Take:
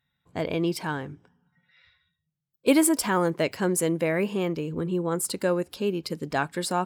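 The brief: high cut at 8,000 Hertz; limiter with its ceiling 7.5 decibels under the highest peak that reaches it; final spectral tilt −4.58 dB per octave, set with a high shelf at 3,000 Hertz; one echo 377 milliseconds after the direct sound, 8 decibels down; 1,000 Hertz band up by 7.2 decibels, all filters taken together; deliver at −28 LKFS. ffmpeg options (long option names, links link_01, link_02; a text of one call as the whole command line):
ffmpeg -i in.wav -af "lowpass=8000,equalizer=frequency=1000:width_type=o:gain=8.5,highshelf=frequency=3000:gain=3,alimiter=limit=-14dB:level=0:latency=1,aecho=1:1:377:0.398,volume=-2dB" out.wav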